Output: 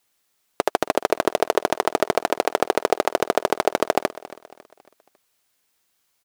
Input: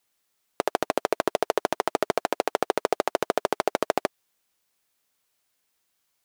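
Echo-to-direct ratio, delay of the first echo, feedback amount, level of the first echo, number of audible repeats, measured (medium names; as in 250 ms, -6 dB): -17.0 dB, 275 ms, 43%, -18.0 dB, 3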